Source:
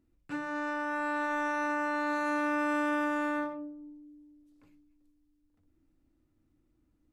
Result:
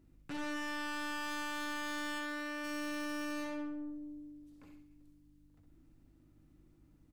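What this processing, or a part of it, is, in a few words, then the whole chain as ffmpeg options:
valve amplifier with mains hum: -filter_complex "[0:a]aeval=exprs='(tanh(178*val(0)+0.4)-tanh(0.4))/178':c=same,aeval=exprs='val(0)+0.000251*(sin(2*PI*50*n/s)+sin(2*PI*2*50*n/s)/2+sin(2*PI*3*50*n/s)/3+sin(2*PI*4*50*n/s)/4+sin(2*PI*5*50*n/s)/5)':c=same,asplit=3[s0][s1][s2];[s0]afade=t=out:st=2.18:d=0.02[s3];[s1]bass=f=250:g=-8,treble=f=4000:g=-8,afade=t=in:st=2.18:d=0.02,afade=t=out:st=2.63:d=0.02[s4];[s2]afade=t=in:st=2.63:d=0.02[s5];[s3][s4][s5]amix=inputs=3:normalize=0,aecho=1:1:67|134|201|268|335:0.447|0.179|0.0715|0.0286|0.0114,volume=2"

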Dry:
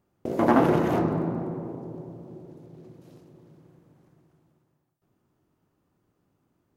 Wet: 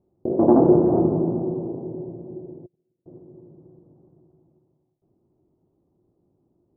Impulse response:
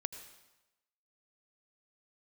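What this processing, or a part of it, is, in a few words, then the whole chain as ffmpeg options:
under water: -filter_complex "[0:a]asettb=1/sr,asplit=3[s0][s1][s2];[s0]atrim=end=2.664[s3];[s1]atrim=start=2.66:end=3.06,asetpts=PTS-STARTPTS,afade=t=in:d=0.004:c=qsin,afade=t=out:st=0.396:d=0.004:c=qsin,agate=range=0.0178:threshold=0.00891:ratio=16:detection=peak[s4];[s2]atrim=start=3.056[s5];[s3][s4]acrossfade=d=0.004:c1=hsin:c2=qsin[s6];[s6][s5]acrossfade=d=0.004:c1=qsin:c2=hsin,lowpass=f=780:w=0.5412,lowpass=f=780:w=1.3066,equalizer=f=360:t=o:w=0.24:g=8,volume=1.41"

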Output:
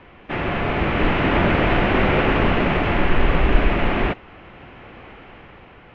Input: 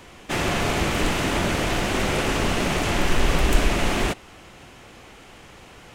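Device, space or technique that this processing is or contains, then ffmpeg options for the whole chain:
action camera in a waterproof case: -af "lowpass=f=2700:w=0.5412,lowpass=f=2700:w=1.3066,dynaudnorm=f=220:g=9:m=2.24" -ar 16000 -c:a aac -b:a 64k

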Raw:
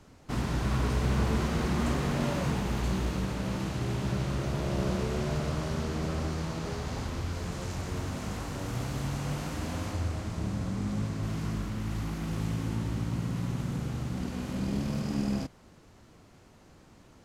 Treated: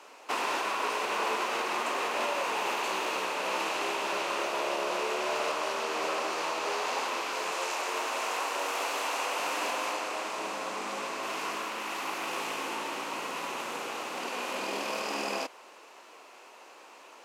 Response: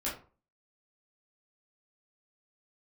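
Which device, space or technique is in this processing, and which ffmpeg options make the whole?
laptop speaker: -filter_complex "[0:a]highpass=f=420:w=0.5412,highpass=f=420:w=1.3066,equalizer=f=1000:t=o:w=0.59:g=6.5,equalizer=f=2600:t=o:w=0.36:g=9,alimiter=level_in=1.5:limit=0.0631:level=0:latency=1:release=393,volume=0.668,asettb=1/sr,asplit=3[s0][s1][s2];[s0]atrim=end=7.514[s3];[s1]atrim=start=7.51:end=9.4,asetpts=PTS-STARTPTS,afade=t=in:d=0.004:c=qsin,afade=t=out:st=1.886:d=0.004:c=qsin,highpass=280[s4];[s2]atrim=start=9.396[s5];[s3][s4]acrossfade=d=0.004:c1=hsin:c2=qsin[s6];[s6][s5]acrossfade=d=0.004:c1=qsin:c2=hsin,volume=2.24"

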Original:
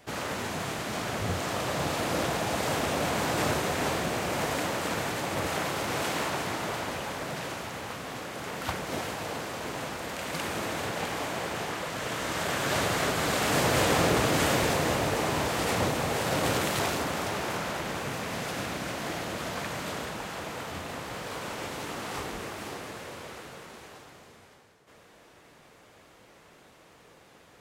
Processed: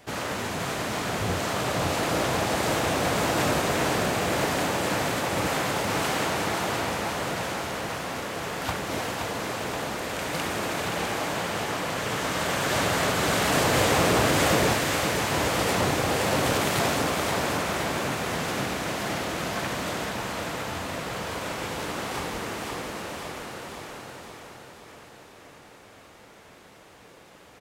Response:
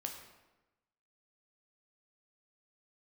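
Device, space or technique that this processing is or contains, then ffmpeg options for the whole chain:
saturated reverb return: -filter_complex "[0:a]asplit=2[s0][s1];[1:a]atrim=start_sample=2205[s2];[s1][s2]afir=irnorm=-1:irlink=0,asoftclip=type=tanh:threshold=0.0447,volume=0.562[s3];[s0][s3]amix=inputs=2:normalize=0,asettb=1/sr,asplit=3[s4][s5][s6];[s4]atrim=end=14.734[s7];[s5]atrim=start=14.73:end=15.31,asetpts=PTS-STARTPTS,afade=t=in:d=0.004:c=qsin,afade=t=out:st=0.576:d=0.004:c=qsin,highpass=1200[s8];[s6]atrim=start=15.306[s9];[s7][s8]acrossfade=d=0.004:c1=hsin:c2=qsin[s10];[s10][s9]acrossfade=d=0.004:c1=qsin:c2=hsin,aecho=1:1:523|1046|1569|2092|2615|3138|3661|4184:0.531|0.313|0.185|0.109|0.0643|0.038|0.0224|0.0132"

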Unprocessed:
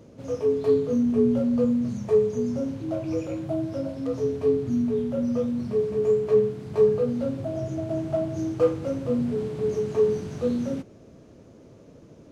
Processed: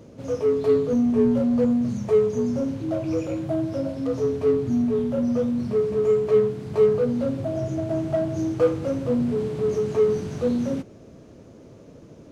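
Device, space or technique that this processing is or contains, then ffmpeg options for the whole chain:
parallel distortion: -filter_complex "[0:a]asplit=2[s0][s1];[s1]asoftclip=type=hard:threshold=0.0562,volume=0.447[s2];[s0][s2]amix=inputs=2:normalize=0"

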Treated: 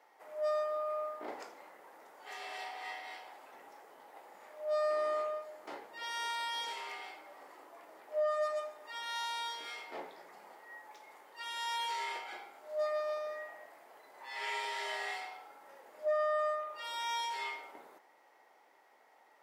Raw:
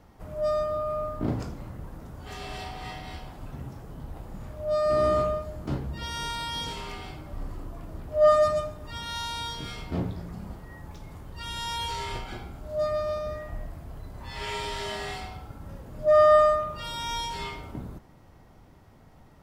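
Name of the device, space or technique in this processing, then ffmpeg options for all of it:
laptop speaker: -af "highpass=f=430:w=0.5412,highpass=f=430:w=1.3066,equalizer=f=850:t=o:w=0.27:g=7,equalizer=f=2000:t=o:w=0.49:g=8.5,alimiter=limit=0.112:level=0:latency=1:release=476,volume=0.447"

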